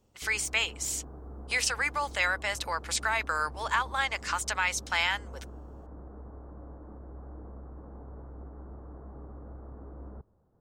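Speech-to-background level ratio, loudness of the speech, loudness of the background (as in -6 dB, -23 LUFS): 17.5 dB, -29.0 LUFS, -46.5 LUFS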